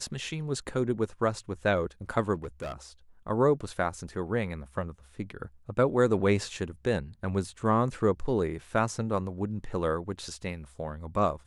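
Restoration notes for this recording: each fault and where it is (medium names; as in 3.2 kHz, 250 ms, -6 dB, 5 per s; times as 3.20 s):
2.34–2.74 s: clipped -32 dBFS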